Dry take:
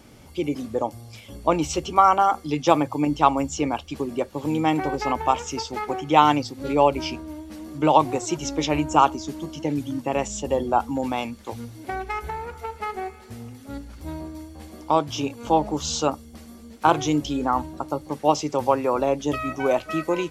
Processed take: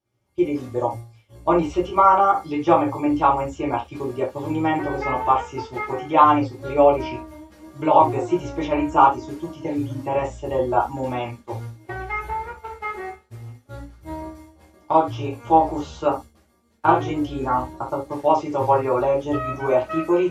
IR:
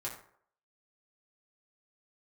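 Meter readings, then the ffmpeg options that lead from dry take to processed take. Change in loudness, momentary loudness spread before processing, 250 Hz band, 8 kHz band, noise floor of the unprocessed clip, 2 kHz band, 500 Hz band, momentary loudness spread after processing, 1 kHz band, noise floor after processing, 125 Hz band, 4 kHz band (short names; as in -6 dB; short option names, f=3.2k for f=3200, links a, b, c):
+2.0 dB, 17 LU, +1.0 dB, under -10 dB, -46 dBFS, +1.0 dB, +3.0 dB, 17 LU, +2.5 dB, -58 dBFS, +1.5 dB, -8.0 dB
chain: -filter_complex "[0:a]acrossover=split=2700[a][b];[b]acompressor=threshold=-49dB:ratio=4:attack=1:release=60[c];[a][c]amix=inputs=2:normalize=0,agate=range=-33dB:threshold=-32dB:ratio=3:detection=peak[d];[1:a]atrim=start_sample=2205,atrim=end_sample=3528[e];[d][e]afir=irnorm=-1:irlink=0,volume=1.5dB"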